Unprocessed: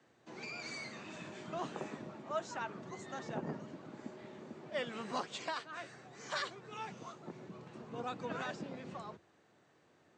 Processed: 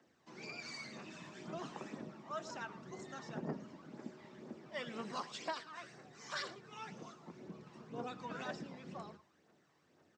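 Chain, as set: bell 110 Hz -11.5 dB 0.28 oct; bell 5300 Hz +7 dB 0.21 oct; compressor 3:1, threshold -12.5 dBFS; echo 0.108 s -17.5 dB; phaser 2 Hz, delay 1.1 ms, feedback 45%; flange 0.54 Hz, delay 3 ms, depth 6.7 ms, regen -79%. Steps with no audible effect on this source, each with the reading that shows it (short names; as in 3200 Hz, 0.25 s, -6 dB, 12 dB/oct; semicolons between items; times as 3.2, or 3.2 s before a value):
compressor, threshold -12.5 dBFS: input peak -23.5 dBFS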